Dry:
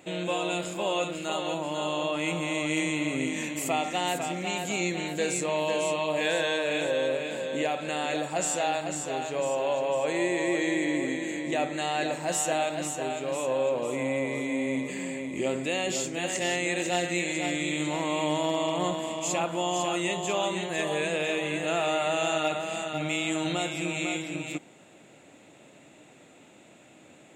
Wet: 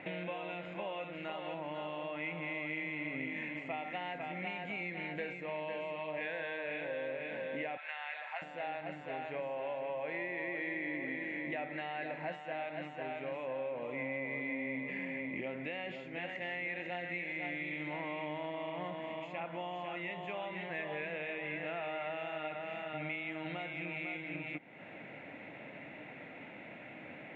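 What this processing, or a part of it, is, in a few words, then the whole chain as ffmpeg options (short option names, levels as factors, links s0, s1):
bass amplifier: -filter_complex "[0:a]asettb=1/sr,asplit=3[s0][s1][s2];[s0]atrim=end=7.774[s3];[s1]atrim=start=7.77:end=8.42,asetpts=PTS-STARTPTS,afade=t=in:d=0.004:c=qsin,afade=t=out:st=0.646:d=0.004:c=qsin,highpass=f=860:w=0.5412,highpass=f=860:w=1.3066[s4];[s2]atrim=start=8.416[s5];[s3][s4]acrossfade=d=0.004:c1=hsin:c2=qsin[s6];[s6][s5]acrossfade=d=0.004:c1=qsin:c2=hsin,tiltshelf=f=1400:g=-3.5,acompressor=threshold=0.00501:ratio=4,highpass=75,equalizer=f=370:t=q:w=4:g=-6,equalizer=f=1200:t=q:w=4:g=-6,equalizer=f=2100:t=q:w=4:g=6,lowpass=f=2300:w=0.5412,lowpass=f=2300:w=1.3066,volume=2.37"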